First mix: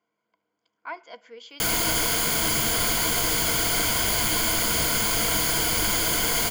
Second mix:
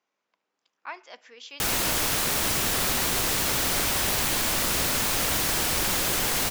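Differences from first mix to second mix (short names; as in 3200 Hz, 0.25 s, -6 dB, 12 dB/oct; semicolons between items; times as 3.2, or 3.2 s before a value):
speech: add tilt +2.5 dB/oct; master: remove ripple EQ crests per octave 1.8, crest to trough 11 dB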